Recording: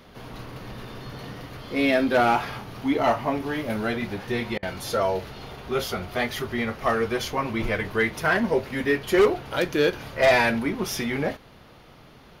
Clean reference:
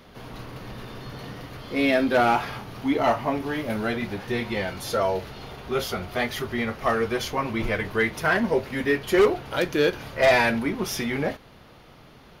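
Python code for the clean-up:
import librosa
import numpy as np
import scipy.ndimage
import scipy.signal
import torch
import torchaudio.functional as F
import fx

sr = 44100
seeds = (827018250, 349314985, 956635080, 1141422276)

y = fx.fix_interpolate(x, sr, at_s=(4.58,), length_ms=46.0)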